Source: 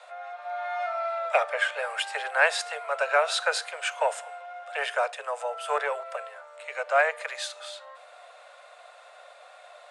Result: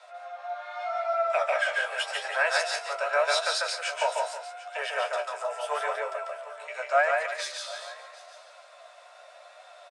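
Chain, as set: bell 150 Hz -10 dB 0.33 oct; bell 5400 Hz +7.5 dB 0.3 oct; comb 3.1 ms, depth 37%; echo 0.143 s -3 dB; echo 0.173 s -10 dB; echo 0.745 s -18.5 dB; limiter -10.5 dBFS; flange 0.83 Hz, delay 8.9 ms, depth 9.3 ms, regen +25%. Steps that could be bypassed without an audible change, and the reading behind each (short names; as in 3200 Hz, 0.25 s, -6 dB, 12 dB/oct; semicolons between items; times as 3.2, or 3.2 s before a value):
bell 150 Hz: input band starts at 380 Hz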